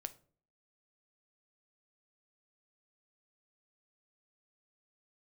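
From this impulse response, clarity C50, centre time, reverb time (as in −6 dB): 18.0 dB, 4 ms, 0.45 s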